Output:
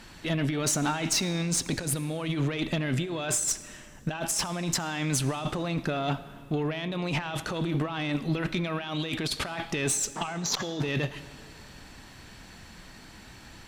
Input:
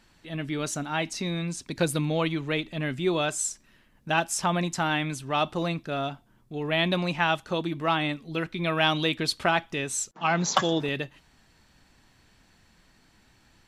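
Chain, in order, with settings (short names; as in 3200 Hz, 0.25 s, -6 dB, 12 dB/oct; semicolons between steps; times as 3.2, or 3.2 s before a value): negative-ratio compressor -35 dBFS, ratio -1; tube stage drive 25 dB, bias 0.3; digital reverb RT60 2.3 s, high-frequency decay 0.85×, pre-delay 25 ms, DRR 15 dB; gain +6.5 dB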